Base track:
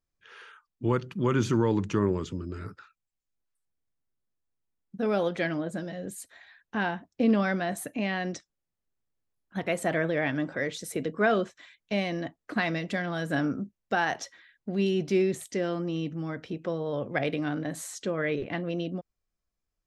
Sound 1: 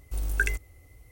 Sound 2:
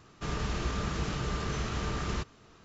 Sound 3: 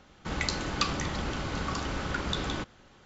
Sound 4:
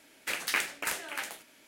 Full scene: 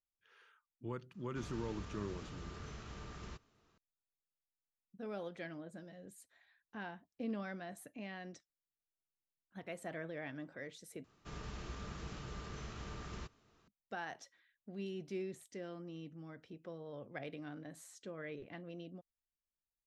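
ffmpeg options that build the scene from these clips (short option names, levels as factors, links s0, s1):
-filter_complex "[2:a]asplit=2[s0][s1];[0:a]volume=0.141,asplit=2[s2][s3];[s2]atrim=end=11.044[s4];[s1]atrim=end=2.64,asetpts=PTS-STARTPTS,volume=0.211[s5];[s3]atrim=start=13.676[s6];[s0]atrim=end=2.64,asetpts=PTS-STARTPTS,volume=0.158,afade=t=in:d=0.004:c=hsin,afade=t=out:st=2.636:d=0.004:c=hsin,adelay=1140[s7];[s4][s5]acrossfade=d=0.004:c1=hsin:c2=hsin[s8];[s8][s6]acrossfade=d=0.004:c1=hsin:c2=hsin[s9];[s9][s7]amix=inputs=2:normalize=0"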